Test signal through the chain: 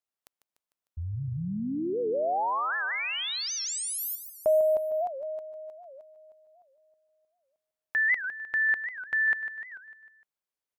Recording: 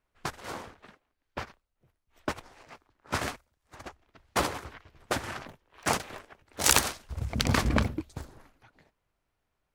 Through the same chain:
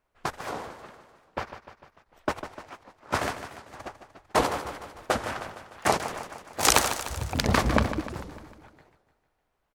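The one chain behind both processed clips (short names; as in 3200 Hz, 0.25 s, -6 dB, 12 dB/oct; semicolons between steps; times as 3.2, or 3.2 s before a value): bell 710 Hz +6 dB 2.2 oct; on a send: feedback echo 0.15 s, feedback 56%, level -11 dB; on the sum: record warp 78 rpm, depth 250 cents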